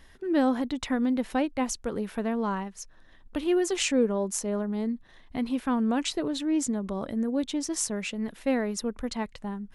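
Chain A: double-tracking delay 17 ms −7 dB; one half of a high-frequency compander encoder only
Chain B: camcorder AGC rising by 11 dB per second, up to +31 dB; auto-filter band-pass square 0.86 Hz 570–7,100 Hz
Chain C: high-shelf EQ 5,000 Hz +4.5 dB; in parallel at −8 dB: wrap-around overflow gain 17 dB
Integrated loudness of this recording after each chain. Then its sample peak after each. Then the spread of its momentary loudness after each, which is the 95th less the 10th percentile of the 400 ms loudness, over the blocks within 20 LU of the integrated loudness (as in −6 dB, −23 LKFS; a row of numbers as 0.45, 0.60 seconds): −28.0, −39.0, −26.0 LKFS; −11.0, −19.0, −12.0 dBFS; 9, 15, 8 LU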